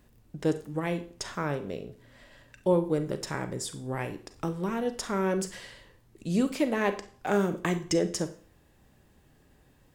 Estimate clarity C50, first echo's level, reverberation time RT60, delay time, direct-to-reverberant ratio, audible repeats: 13.5 dB, no echo, 0.45 s, no echo, 10.5 dB, no echo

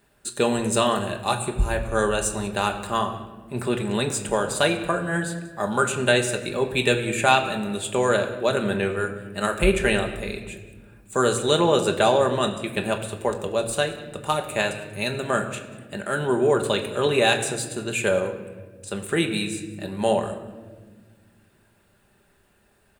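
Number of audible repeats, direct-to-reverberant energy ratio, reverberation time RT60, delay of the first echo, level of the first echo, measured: 1, 3.5 dB, 1.4 s, 187 ms, -20.5 dB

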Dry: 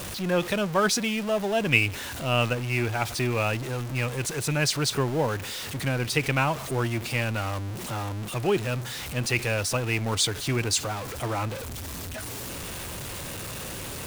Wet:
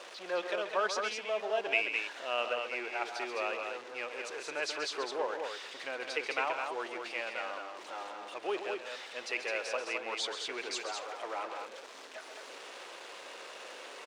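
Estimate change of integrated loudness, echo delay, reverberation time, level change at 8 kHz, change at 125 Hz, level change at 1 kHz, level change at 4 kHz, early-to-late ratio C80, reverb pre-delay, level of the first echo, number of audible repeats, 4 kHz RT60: -9.0 dB, 135 ms, no reverb, -15.5 dB, under -40 dB, -6.0 dB, -9.0 dB, no reverb, no reverb, -9.5 dB, 2, no reverb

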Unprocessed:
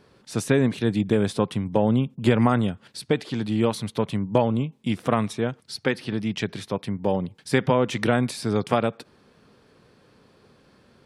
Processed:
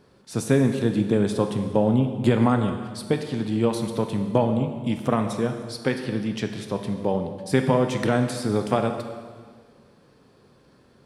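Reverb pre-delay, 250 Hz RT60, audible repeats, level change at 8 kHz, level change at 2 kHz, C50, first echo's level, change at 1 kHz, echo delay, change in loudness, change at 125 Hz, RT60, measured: 4 ms, 1.7 s, no echo, 0.0 dB, -2.5 dB, 7.5 dB, no echo, -0.5 dB, no echo, +0.5 dB, +0.5 dB, 1.7 s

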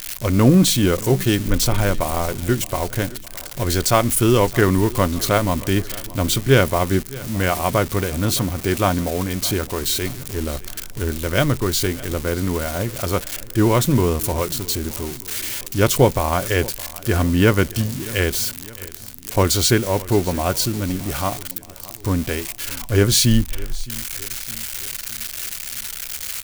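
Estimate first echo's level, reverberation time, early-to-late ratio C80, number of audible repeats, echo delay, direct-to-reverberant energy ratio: -20.0 dB, no reverb, no reverb, 3, 615 ms, no reverb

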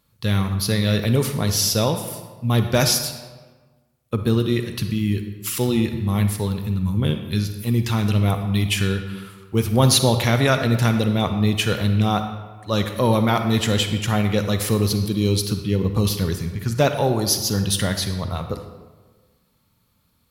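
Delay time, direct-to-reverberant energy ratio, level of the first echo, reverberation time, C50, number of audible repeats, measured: no echo, 7.0 dB, no echo, 1.4 s, 7.5 dB, no echo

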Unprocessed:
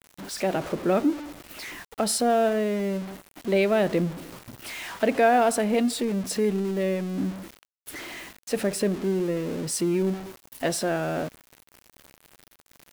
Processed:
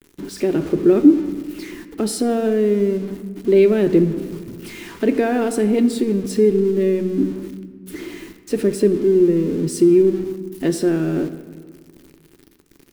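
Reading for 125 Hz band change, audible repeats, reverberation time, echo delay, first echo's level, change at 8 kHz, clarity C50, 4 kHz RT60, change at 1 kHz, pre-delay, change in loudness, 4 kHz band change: +6.5 dB, no echo, 1.8 s, no echo, no echo, -1.0 dB, 12.5 dB, 1.0 s, -5.5 dB, 3 ms, +7.5 dB, -1.0 dB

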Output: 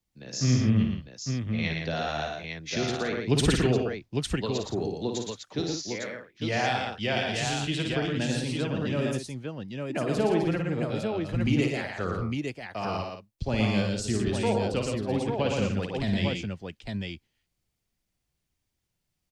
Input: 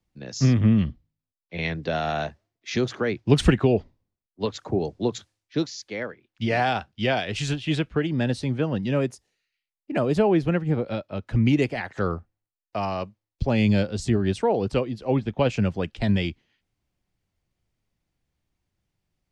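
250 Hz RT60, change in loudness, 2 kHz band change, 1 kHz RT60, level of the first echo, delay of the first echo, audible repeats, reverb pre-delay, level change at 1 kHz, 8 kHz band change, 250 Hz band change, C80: no reverb, -4.0 dB, -1.5 dB, no reverb, -6.0 dB, 55 ms, 4, no reverb, -3.0 dB, +4.0 dB, -3.5 dB, no reverb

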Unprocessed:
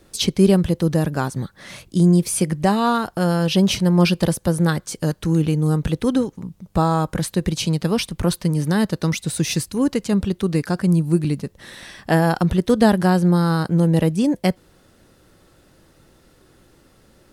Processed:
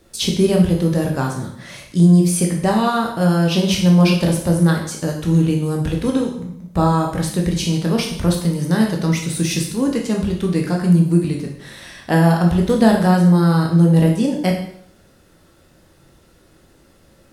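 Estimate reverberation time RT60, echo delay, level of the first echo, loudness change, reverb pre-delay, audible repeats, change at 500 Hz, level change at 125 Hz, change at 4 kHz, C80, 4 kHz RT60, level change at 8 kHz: 0.65 s, no echo, no echo, +2.5 dB, 12 ms, no echo, +1.5 dB, +3.0 dB, +1.5 dB, 9.0 dB, 0.65 s, +1.5 dB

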